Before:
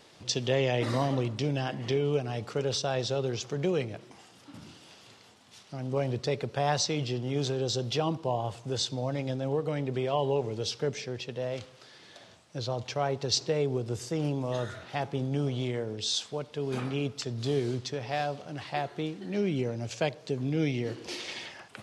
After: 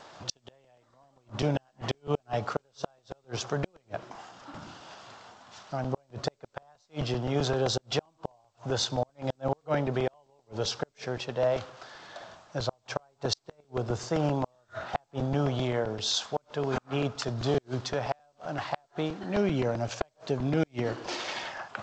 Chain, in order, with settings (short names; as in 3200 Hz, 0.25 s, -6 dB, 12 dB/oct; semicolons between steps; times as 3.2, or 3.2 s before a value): band shelf 970 Hz +10 dB; flipped gate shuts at -17 dBFS, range -41 dB; short-mantissa float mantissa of 6-bit; crackling interface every 0.13 s, samples 128, repeat, from 0.64; gain +1.5 dB; G.722 64 kbps 16000 Hz